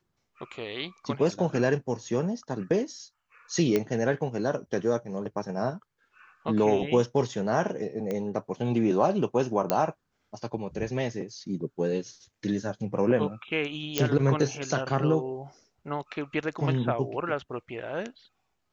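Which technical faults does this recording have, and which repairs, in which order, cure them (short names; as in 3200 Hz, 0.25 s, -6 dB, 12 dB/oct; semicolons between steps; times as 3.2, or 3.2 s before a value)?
3.76 pop -12 dBFS
8.11 pop -19 dBFS
9.7 pop -9 dBFS
13.98 pop -8 dBFS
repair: de-click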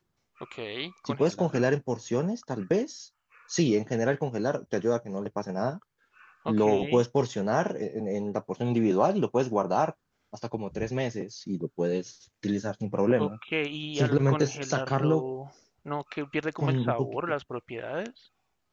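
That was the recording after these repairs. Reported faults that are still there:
none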